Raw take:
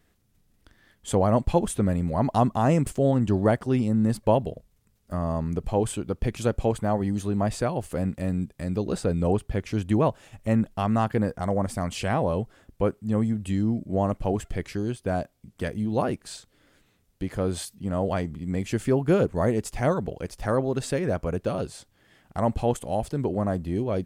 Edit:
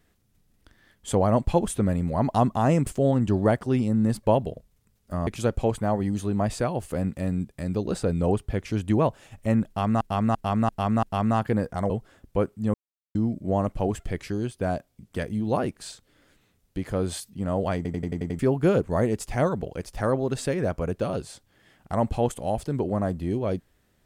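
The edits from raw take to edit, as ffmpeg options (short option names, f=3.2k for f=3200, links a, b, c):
-filter_complex "[0:a]asplit=16[a][b][c][d][e][f][g][h][i][j][k][l][m][n][o][p];[a]atrim=end=5.272[q];[b]atrim=start=6.278:end=11.022[r];[c]atrim=start=10.678:end=11.022[s];[d]atrim=start=10.678:end=11.022[t];[e]atrim=start=10.678:end=11.022[u];[f]atrim=start=10.678:end=11.552[v];[g]atrim=start=12.348:end=13.19,asetpts=PTS-STARTPTS,afade=t=out:st=0.838:d=0.004:c=hsin[w];[h]atrim=start=13.19:end=13.6,asetpts=PTS-STARTPTS,volume=0[x];[i]atrim=start=13.6:end=18.302,asetpts=PTS-STARTPTS,afade=t=in:d=0.004:c=hsin[y];[j]atrim=start=18.208:end=18.302[z];[k]atrim=start=18.208:end=18.302[aa];[l]atrim=start=18.208:end=18.302[ab];[m]atrim=start=18.208:end=18.302[ac];[n]atrim=start=18.208:end=18.302[ad];[o]atrim=start=18.208:end=18.302[ae];[p]atrim=start=18.838[af];[q][r]acrossfade=d=0.004:c1=hsin:c2=hsin[ag];[ag][s]acrossfade=d=0.004:c1=hsin:c2=hsin[ah];[ah][t]acrossfade=d=0.004:c1=hsin:c2=hsin[ai];[ai][u]acrossfade=d=0.004:c1=hsin:c2=hsin[aj];[aj][v]acrossfade=d=0.004:c1=hsin:c2=hsin[ak];[w][x][y]concat=n=3:v=0:a=1[al];[ak][al]acrossfade=d=0.004:c1=hsin:c2=hsin[am];[am][z]acrossfade=d=0.004:c1=hsin:c2=hsin[an];[an][aa]acrossfade=d=0.004:c1=hsin:c2=hsin[ao];[ao][ab]acrossfade=d=0.004:c1=hsin:c2=hsin[ap];[ap][ac]acrossfade=d=0.004:c1=hsin:c2=hsin[aq];[aq][ad]acrossfade=d=0.004:c1=hsin:c2=hsin[ar];[ar][ae]acrossfade=d=0.004:c1=hsin:c2=hsin[as];[as][af]acrossfade=d=0.004:c1=hsin:c2=hsin"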